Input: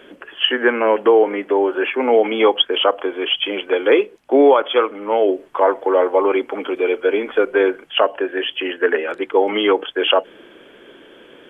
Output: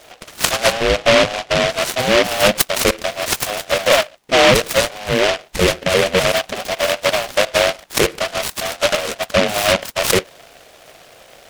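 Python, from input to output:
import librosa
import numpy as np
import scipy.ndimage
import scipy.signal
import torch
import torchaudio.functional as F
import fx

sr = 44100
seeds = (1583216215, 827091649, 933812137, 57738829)

y = fx.band_invert(x, sr, width_hz=1000)
y = fx.savgol(y, sr, points=65, at=(0.72, 1.69))
y = fx.noise_mod_delay(y, sr, seeds[0], noise_hz=2000.0, depth_ms=0.18)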